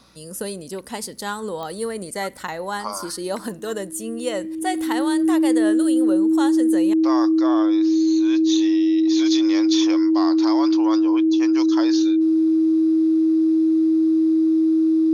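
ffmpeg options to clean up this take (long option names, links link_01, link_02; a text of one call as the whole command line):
ffmpeg -i in.wav -af "adeclick=threshold=4,bandreject=frequency=59.3:width_type=h:width=4,bandreject=frequency=118.6:width_type=h:width=4,bandreject=frequency=177.9:width_type=h:width=4,bandreject=frequency=237.2:width_type=h:width=4,bandreject=frequency=320:width=30" out.wav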